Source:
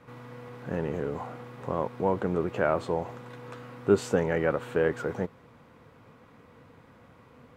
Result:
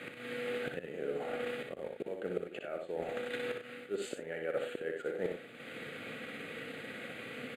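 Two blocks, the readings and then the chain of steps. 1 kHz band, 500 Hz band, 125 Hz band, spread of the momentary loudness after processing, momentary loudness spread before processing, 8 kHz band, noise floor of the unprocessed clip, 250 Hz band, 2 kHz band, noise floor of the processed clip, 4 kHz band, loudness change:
−12.5 dB, −8.5 dB, −17.0 dB, 6 LU, 18 LU, −6.5 dB, −56 dBFS, −11.5 dB, −3.5 dB, −50 dBFS, +2.0 dB, −10.5 dB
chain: in parallel at −11 dB: floating-point word with a short mantissa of 2 bits
on the sum: low-pass filter 7,400 Hz 12 dB per octave
spectral tilt +3 dB per octave
volume swells 389 ms
dynamic equaliser 590 Hz, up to +7 dB, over −46 dBFS, Q 0.73
high-pass filter 190 Hz 12 dB per octave
transient designer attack +3 dB, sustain −8 dB
reversed playback
downward compressor 8 to 1, threshold −46 dBFS, peak gain reduction 29 dB
reversed playback
phaser with its sweep stopped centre 2,400 Hz, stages 4
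loudspeakers that aren't time-aligned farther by 21 metres −5 dB, 33 metres −10 dB
level +13.5 dB

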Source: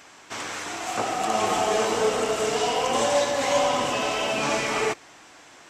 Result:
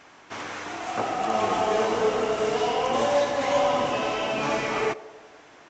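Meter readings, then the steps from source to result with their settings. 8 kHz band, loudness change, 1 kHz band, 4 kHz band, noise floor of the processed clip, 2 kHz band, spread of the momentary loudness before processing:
−9.5 dB, −1.0 dB, −0.5 dB, −4.5 dB, −51 dBFS, −2.5 dB, 9 LU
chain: feedback echo with a band-pass in the loop 94 ms, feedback 71%, band-pass 550 Hz, level −16 dB
downsampling to 16,000 Hz
high-shelf EQ 4,000 Hz −11 dB

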